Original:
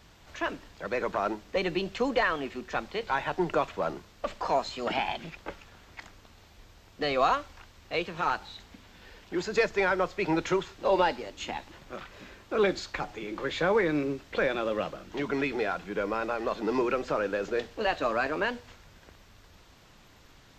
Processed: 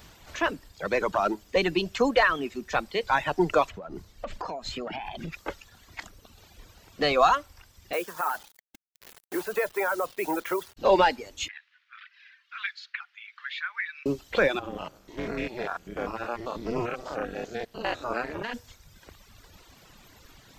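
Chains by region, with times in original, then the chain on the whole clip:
3.7–5.33 tilt -1.5 dB/oct + compressor 16:1, threshold -34 dBFS
7.93–10.77 three-band isolator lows -18 dB, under 310 Hz, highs -21 dB, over 2300 Hz + compressor 2:1, threshold -30 dBFS + requantised 8-bit, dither none
11.48–14.06 steep high-pass 1500 Hz + air absorption 310 m
14.59–18.54 stepped spectrum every 0.1 s + AM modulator 240 Hz, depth 85%
whole clip: reverb removal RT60 1.2 s; high shelf 9400 Hz +11.5 dB; gain +5 dB

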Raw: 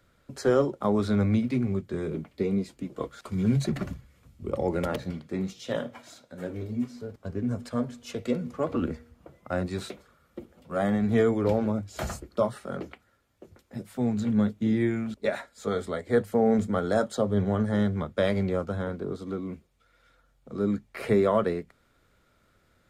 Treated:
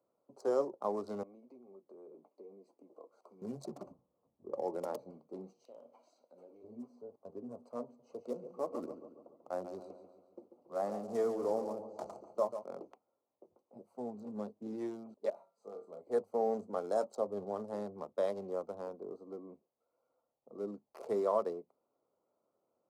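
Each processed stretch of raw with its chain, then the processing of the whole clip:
1.23–3.42 HPF 280 Hz + compressor 3:1, threshold -42 dBFS
3.92–4.55 LPF 1300 Hz + notches 60/120/180/240/300/360/420/480/540/600 Hz
5.65–6.64 weighting filter D + compressor 3:1, threshold -44 dBFS
7.85–12.64 block floating point 5-bit + air absorption 56 m + feedback echo 0.141 s, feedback 52%, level -9 dB
15.3–16.01 resonator 170 Hz, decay 0.44 s, mix 70% + flutter echo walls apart 4.9 m, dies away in 0.25 s + mismatched tape noise reduction encoder only
whole clip: Wiener smoothing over 25 samples; HPF 500 Hz 12 dB/oct; band shelf 2300 Hz -15 dB; gain -4.5 dB

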